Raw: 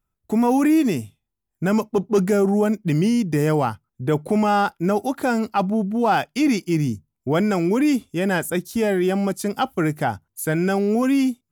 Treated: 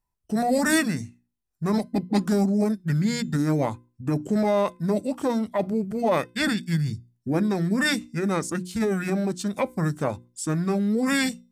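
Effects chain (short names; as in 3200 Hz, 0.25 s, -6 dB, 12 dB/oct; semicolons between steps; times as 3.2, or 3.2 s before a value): formant shift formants -5 st; notches 60/120/180/240/300/360 Hz; resonator 510 Hz, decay 0.34 s, mix 30%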